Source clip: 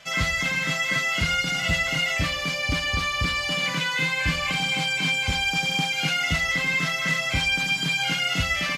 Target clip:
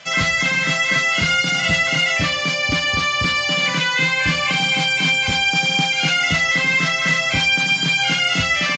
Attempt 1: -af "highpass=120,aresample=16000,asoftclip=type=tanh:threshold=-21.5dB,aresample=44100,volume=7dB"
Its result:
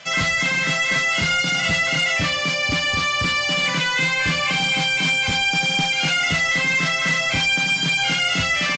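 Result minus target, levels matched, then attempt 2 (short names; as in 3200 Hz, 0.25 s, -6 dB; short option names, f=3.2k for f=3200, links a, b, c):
soft clip: distortion +14 dB
-af "highpass=120,aresample=16000,asoftclip=type=tanh:threshold=-12dB,aresample=44100,volume=7dB"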